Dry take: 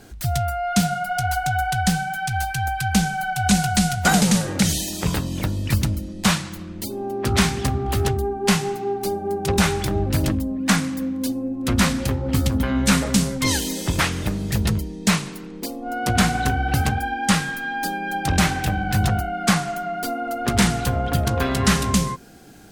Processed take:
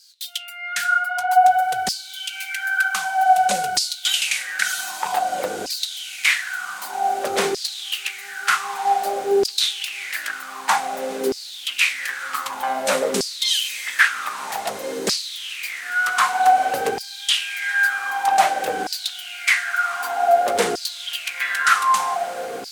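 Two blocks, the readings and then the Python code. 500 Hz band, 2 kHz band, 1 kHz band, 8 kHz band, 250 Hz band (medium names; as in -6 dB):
+2.0 dB, +5.0 dB, +5.5 dB, -1.5 dB, -15.5 dB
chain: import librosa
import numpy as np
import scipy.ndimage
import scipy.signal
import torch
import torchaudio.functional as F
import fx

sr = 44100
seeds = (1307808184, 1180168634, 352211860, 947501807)

y = fx.echo_diffused(x, sr, ms=1509, feedback_pct=70, wet_db=-10.5)
y = fx.filter_lfo_highpass(y, sr, shape='saw_down', hz=0.53, low_hz=390.0, high_hz=5000.0, q=7.3)
y = fx.peak_eq(y, sr, hz=5100.0, db=-2.0, octaves=0.77)
y = y * librosa.db_to_amplitude(-2.5)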